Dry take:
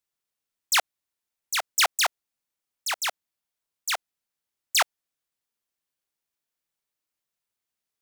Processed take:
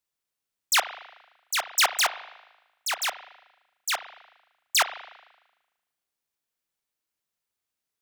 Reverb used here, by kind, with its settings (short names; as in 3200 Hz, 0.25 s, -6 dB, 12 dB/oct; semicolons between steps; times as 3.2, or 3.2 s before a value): spring tank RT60 1.1 s, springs 37 ms, chirp 60 ms, DRR 11.5 dB